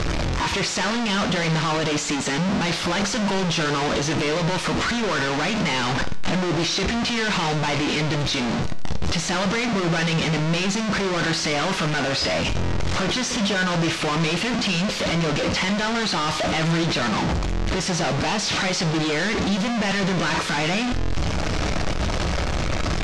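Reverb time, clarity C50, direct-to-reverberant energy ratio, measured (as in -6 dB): 0.55 s, 14.5 dB, 8.5 dB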